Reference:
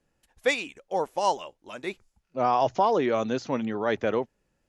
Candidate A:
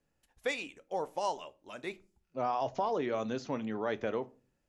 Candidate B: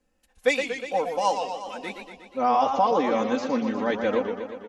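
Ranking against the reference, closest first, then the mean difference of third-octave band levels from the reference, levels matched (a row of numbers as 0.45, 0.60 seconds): A, B; 2.0, 5.5 decibels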